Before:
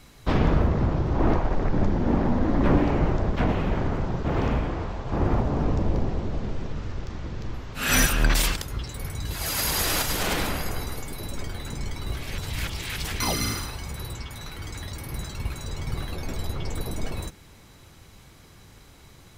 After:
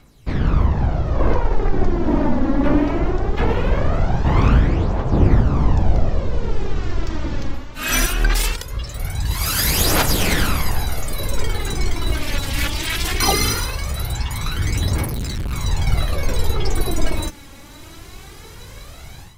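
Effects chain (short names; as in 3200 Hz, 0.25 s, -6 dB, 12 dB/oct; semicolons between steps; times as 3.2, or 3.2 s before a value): AGC gain up to 16 dB; phaser 0.2 Hz, delay 3.7 ms, feedback 55%; 15.05–15.53 hard clip -16.5 dBFS, distortion -18 dB; gain -5.5 dB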